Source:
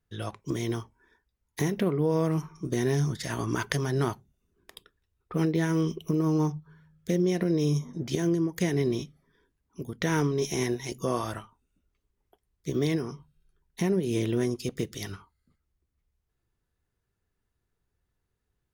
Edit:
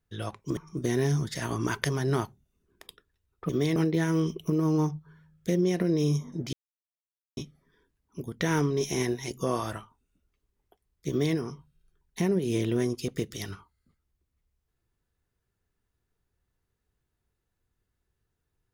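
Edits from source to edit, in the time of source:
0.57–2.45 cut
8.14–8.98 mute
12.7–12.97 copy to 5.37

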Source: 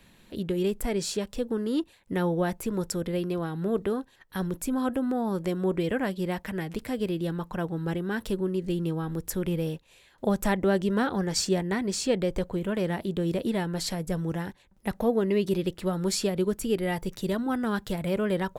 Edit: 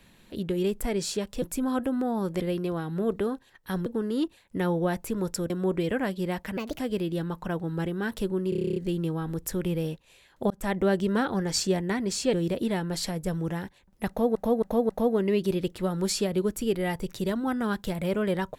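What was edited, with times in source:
1.42–3.06 swap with 4.52–5.5
6.57–6.88 speed 139%
8.58 stutter 0.03 s, 10 plays
10.32–10.59 fade in
12.15–13.17 cut
14.92–15.19 loop, 4 plays

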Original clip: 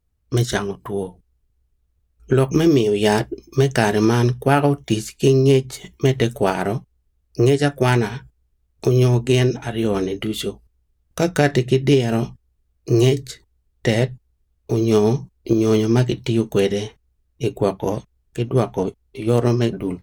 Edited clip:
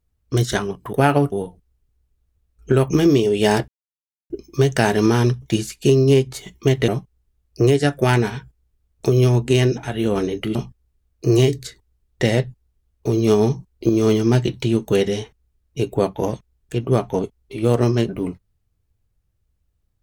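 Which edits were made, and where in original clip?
3.29 insert silence 0.62 s
4.41–4.8 move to 0.93
6.26–6.67 cut
10.34–12.19 cut

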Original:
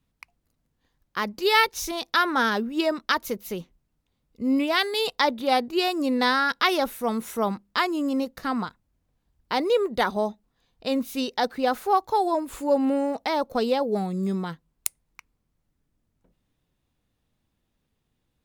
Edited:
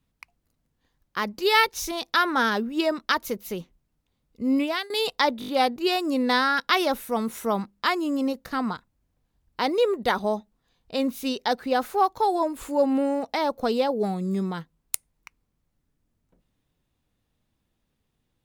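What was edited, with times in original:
4.62–4.9 fade out, to -20.5 dB
5.4 stutter 0.02 s, 5 plays

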